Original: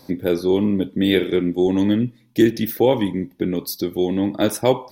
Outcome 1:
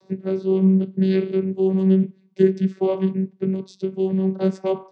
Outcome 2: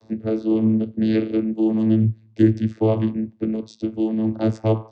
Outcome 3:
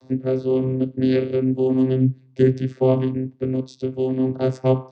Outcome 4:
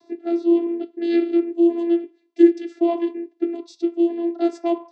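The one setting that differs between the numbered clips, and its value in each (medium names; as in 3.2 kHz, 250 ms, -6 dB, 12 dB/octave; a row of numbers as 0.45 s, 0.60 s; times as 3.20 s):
vocoder, frequency: 190 Hz, 110 Hz, 130 Hz, 340 Hz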